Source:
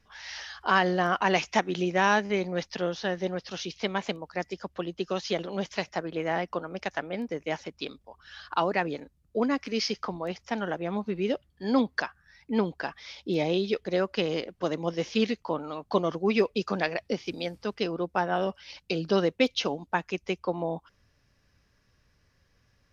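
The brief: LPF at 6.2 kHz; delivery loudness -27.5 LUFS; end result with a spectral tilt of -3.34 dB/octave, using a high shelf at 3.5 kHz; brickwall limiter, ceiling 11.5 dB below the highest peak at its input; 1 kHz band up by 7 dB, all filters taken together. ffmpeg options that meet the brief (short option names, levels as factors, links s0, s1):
-af "lowpass=6200,equalizer=f=1000:t=o:g=8.5,highshelf=f=3500:g=4,volume=1.33,alimiter=limit=0.211:level=0:latency=1"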